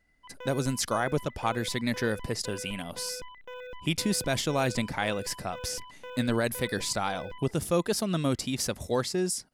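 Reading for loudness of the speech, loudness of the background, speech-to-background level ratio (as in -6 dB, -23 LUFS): -30.0 LUFS, -44.0 LUFS, 14.0 dB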